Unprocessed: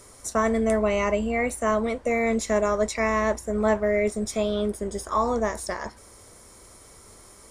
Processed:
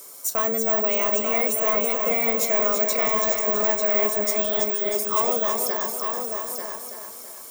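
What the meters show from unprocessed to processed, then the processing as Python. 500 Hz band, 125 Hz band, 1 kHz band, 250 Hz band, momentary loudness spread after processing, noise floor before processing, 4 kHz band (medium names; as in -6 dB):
-0.5 dB, under -10 dB, 0.0 dB, -7.0 dB, 9 LU, -50 dBFS, +5.5 dB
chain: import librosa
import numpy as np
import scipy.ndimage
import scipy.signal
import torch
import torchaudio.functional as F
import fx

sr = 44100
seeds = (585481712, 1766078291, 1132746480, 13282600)

y = scipy.signal.sosfilt(scipy.signal.butter(2, 320.0, 'highpass', fs=sr, output='sos'), x)
y = fx.high_shelf(y, sr, hz=3800.0, db=8.0)
y = fx.notch(y, sr, hz=1900.0, q=7.8)
y = 10.0 ** (-19.0 / 20.0) * np.tanh(y / 10.0 ** (-19.0 / 20.0))
y = y + 10.0 ** (-6.0 / 20.0) * np.pad(y, (int(892 * sr / 1000.0), 0))[:len(y)]
y = (np.kron(scipy.signal.resample_poly(y, 1, 2), np.eye(2)[0]) * 2)[:len(y)]
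y = fx.echo_crushed(y, sr, ms=329, feedback_pct=55, bits=8, wet_db=-5.5)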